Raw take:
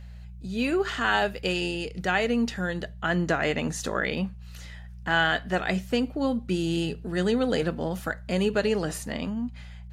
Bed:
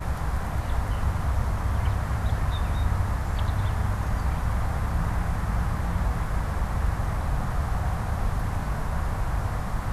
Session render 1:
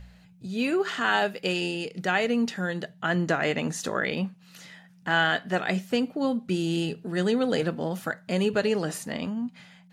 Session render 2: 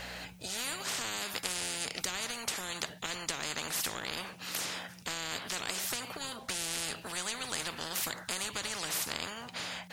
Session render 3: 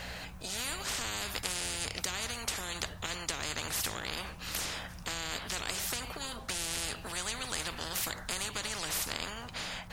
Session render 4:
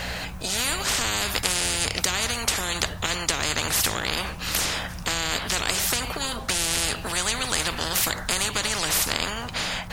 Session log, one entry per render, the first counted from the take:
hum removal 60 Hz, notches 2
downward compressor, threshold −25 dBFS, peak gain reduction 7 dB; every bin compressed towards the loudest bin 10 to 1
mix in bed −23 dB
level +11 dB

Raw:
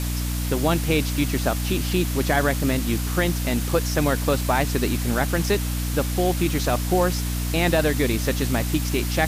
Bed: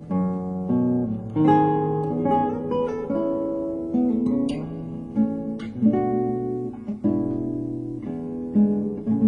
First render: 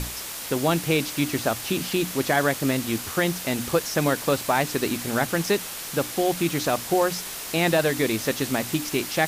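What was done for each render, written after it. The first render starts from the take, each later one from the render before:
mains-hum notches 60/120/180/240/300 Hz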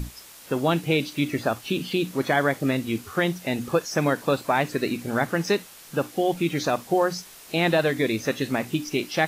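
noise reduction from a noise print 12 dB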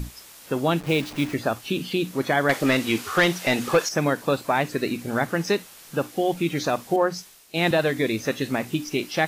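0:00.80–0:01.34: hold until the input has moved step −33 dBFS
0:02.49–0:03.89: mid-hump overdrive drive 17 dB, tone 5,700 Hz, clips at −8.5 dBFS
0:06.96–0:07.71: multiband upward and downward expander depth 70%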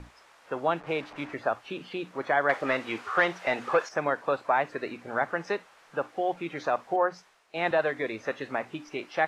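low-pass filter 6,800 Hz 12 dB per octave
three-way crossover with the lows and the highs turned down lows −16 dB, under 500 Hz, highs −16 dB, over 2,000 Hz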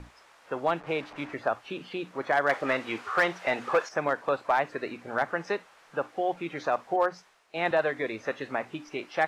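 gain into a clipping stage and back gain 15.5 dB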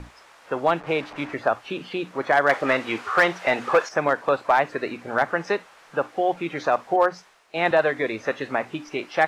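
level +6 dB

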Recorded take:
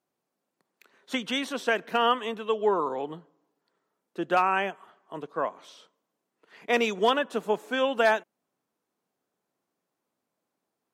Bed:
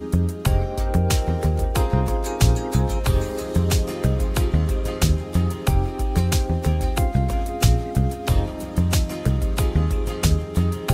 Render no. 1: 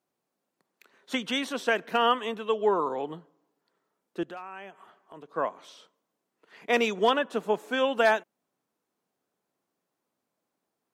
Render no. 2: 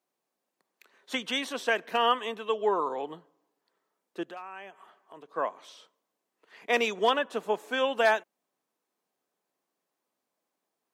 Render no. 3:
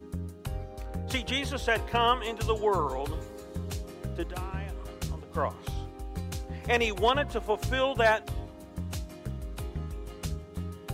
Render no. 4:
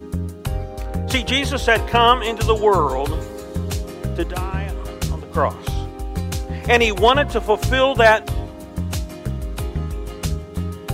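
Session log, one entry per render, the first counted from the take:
0:04.23–0:05.35: downward compressor 2.5 to 1, threshold −46 dBFS; 0:06.88–0:07.58: high-shelf EQ 5,700 Hz −4 dB
high-pass filter 380 Hz 6 dB per octave; notch filter 1,400 Hz, Q 18
mix in bed −16 dB
level +11 dB; brickwall limiter −1 dBFS, peak gain reduction 1 dB

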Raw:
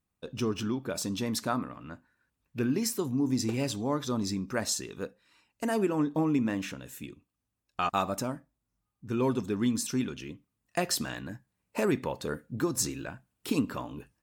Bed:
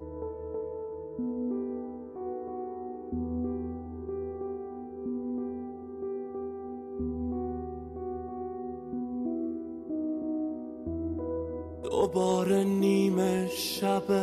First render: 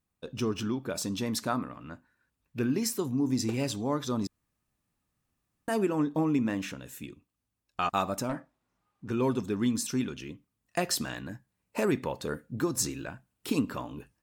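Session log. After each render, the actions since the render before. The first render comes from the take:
0:04.27–0:05.68: fill with room tone
0:08.29–0:09.11: mid-hump overdrive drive 21 dB, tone 1,400 Hz, clips at −22.5 dBFS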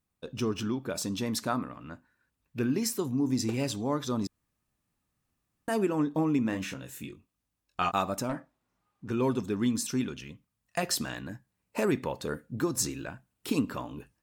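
0:06.50–0:07.96: double-tracking delay 22 ms −5.5 dB
0:10.19–0:10.83: parametric band 330 Hz −11.5 dB 0.58 octaves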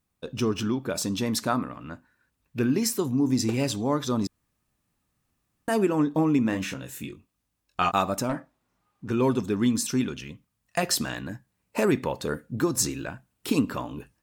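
level +4.5 dB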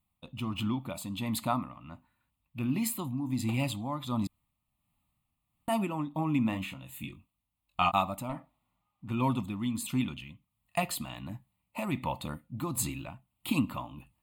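phaser with its sweep stopped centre 1,600 Hz, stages 6
amplitude tremolo 1.4 Hz, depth 48%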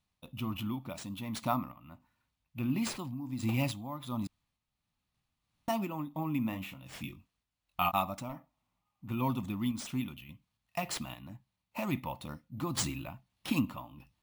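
decimation without filtering 3×
sample-and-hold tremolo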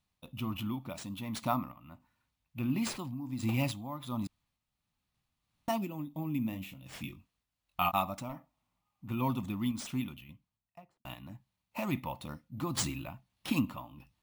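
0:05.78–0:06.86: parametric band 1,200 Hz −11 dB 1.6 octaves
0:10.02–0:11.05: fade out and dull

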